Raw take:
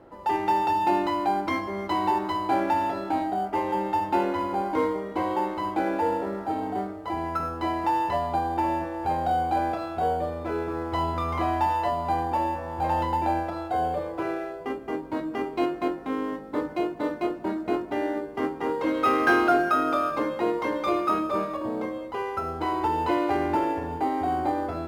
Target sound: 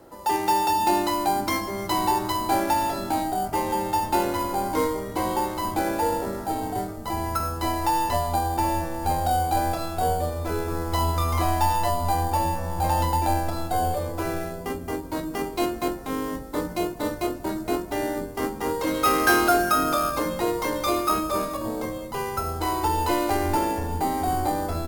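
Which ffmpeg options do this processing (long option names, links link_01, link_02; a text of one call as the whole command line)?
ffmpeg -i in.wav -filter_complex "[0:a]asettb=1/sr,asplit=3[link_01][link_02][link_03];[link_01]atrim=end=6.454[link_04];[link_02]atrim=start=6.45:end=6.89,asetpts=PTS-STARTPTS,afade=type=in:duration=0.004:curve=qsin,afade=type=out:start_time=0.436:duration=0.004:curve=qsin,bandreject=frequency=1200:width=12[link_05];[link_03]atrim=start=6.886[link_06];[link_04][link_05]acrossfade=duration=0.004:curve1=hsin:curve2=qsin[link_07];[link_07][link_06]acrossfade=duration=0.004:curve1=qsin:curve2=hsin,asubboost=boost=4.5:cutoff=78,acrossover=split=270|3700[link_08][link_09][link_10];[link_08]asplit=8[link_11][link_12][link_13][link_14][link_15][link_16][link_17][link_18];[link_12]adelay=486,afreqshift=-86,volume=-3dB[link_19];[link_13]adelay=972,afreqshift=-172,volume=-8.7dB[link_20];[link_14]adelay=1458,afreqshift=-258,volume=-14.4dB[link_21];[link_15]adelay=1944,afreqshift=-344,volume=-20dB[link_22];[link_16]adelay=2430,afreqshift=-430,volume=-25.7dB[link_23];[link_17]adelay=2916,afreqshift=-516,volume=-31.4dB[link_24];[link_18]adelay=3402,afreqshift=-602,volume=-37.1dB[link_25];[link_11][link_19][link_20][link_21][link_22][link_23][link_24][link_25]amix=inputs=8:normalize=0[link_26];[link_10]crystalizer=i=6.5:c=0[link_27];[link_26][link_09][link_27]amix=inputs=3:normalize=0,volume=1.5dB" out.wav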